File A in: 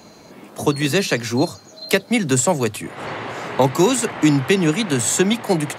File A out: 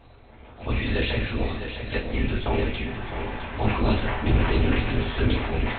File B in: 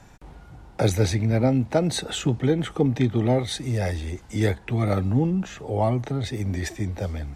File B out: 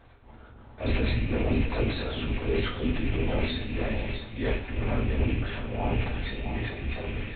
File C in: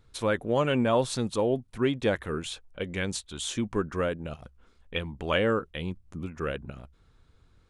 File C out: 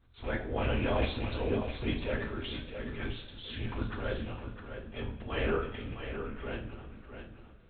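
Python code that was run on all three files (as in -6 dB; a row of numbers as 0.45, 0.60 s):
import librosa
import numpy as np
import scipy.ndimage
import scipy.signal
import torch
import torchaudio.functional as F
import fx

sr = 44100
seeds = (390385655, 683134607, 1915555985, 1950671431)

p1 = fx.rattle_buzz(x, sr, strikes_db=-32.0, level_db=-23.0)
p2 = fx.transient(p1, sr, attack_db=-9, sustain_db=8)
p3 = fx.lpc_vocoder(p2, sr, seeds[0], excitation='whisper', order=8)
p4 = p3 + fx.echo_single(p3, sr, ms=659, db=-8.5, dry=0)
p5 = fx.rev_double_slope(p4, sr, seeds[1], early_s=0.46, late_s=4.2, knee_db=-21, drr_db=1.0)
y = p5 * 10.0 ** (-7.5 / 20.0)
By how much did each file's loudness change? -7.0, -5.5, -6.5 LU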